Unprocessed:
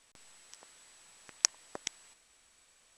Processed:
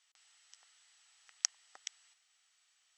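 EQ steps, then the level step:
loudspeaker in its box 150–6,600 Hz, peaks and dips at 770 Hz +10 dB, 1,300 Hz +9 dB, 1,900 Hz +7 dB, 3,000 Hz +6 dB
first difference
−2.5 dB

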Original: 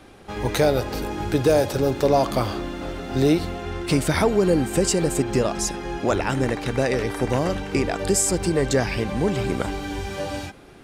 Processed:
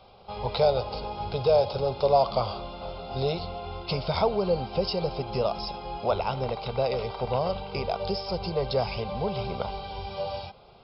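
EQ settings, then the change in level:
linear-phase brick-wall low-pass 5,400 Hz
low-shelf EQ 170 Hz −7.5 dB
phaser with its sweep stopped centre 730 Hz, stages 4
0.0 dB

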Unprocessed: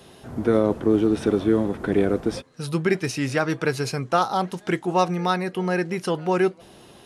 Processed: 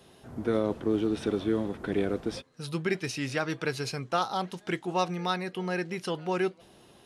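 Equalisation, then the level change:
dynamic equaliser 3,500 Hz, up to +6 dB, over −45 dBFS, Q 0.92
−8.0 dB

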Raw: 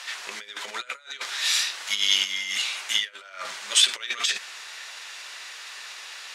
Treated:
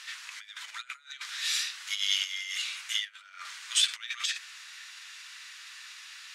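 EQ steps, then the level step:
high-pass filter 1,200 Hz 24 dB per octave
−6.5 dB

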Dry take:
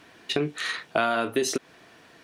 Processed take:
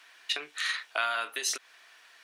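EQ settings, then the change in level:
high-pass filter 1,300 Hz 12 dB per octave
0.0 dB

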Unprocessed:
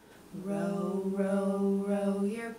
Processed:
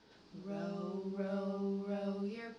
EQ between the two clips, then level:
transistor ladder low-pass 5,300 Hz, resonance 60%
+2.0 dB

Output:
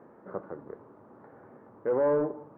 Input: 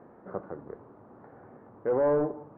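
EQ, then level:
low-shelf EQ 92 Hz −10 dB
notch filter 730 Hz, Q 12
0.0 dB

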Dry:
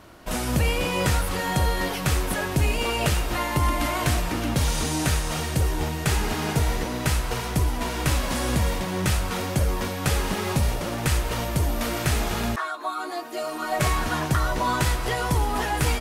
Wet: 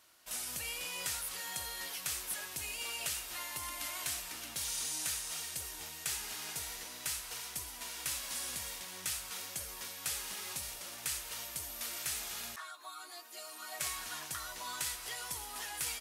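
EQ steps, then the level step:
first-order pre-emphasis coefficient 0.97
high-shelf EQ 11,000 Hz −7 dB
−3.0 dB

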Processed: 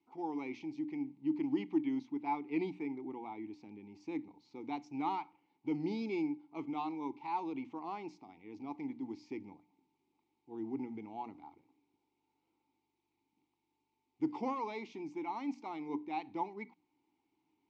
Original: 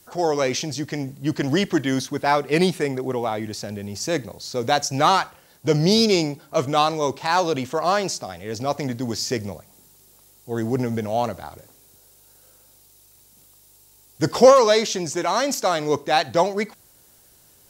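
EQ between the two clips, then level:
formant filter u
high-frequency loss of the air 97 metres
mains-hum notches 60/120/180/240/300 Hz
−5.0 dB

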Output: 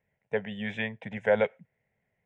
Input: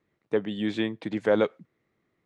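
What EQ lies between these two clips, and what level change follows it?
dynamic equaliser 2,000 Hz, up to +5 dB, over −41 dBFS, Q 0.74
high-frequency loss of the air 77 metres
phaser with its sweep stopped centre 1,200 Hz, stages 6
+1.0 dB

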